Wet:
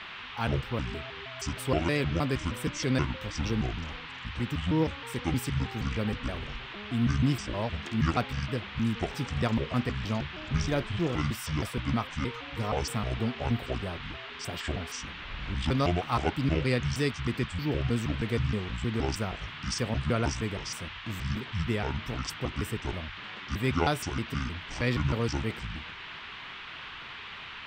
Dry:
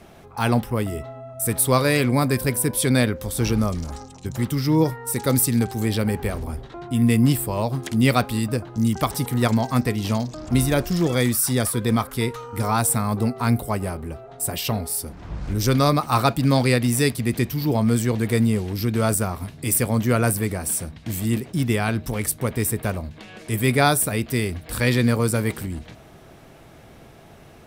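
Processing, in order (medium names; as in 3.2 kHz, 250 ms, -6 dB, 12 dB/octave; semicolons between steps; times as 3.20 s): pitch shift switched off and on -9 st, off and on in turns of 157 ms; boxcar filter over 4 samples; band noise 910–3400 Hz -35 dBFS; trim -8 dB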